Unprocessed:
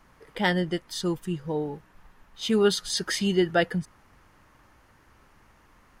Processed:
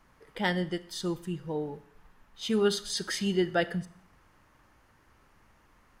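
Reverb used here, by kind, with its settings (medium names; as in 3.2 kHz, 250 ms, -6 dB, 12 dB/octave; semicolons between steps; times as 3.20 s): Schroeder reverb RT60 0.63 s, combs from 29 ms, DRR 15 dB; trim -4.5 dB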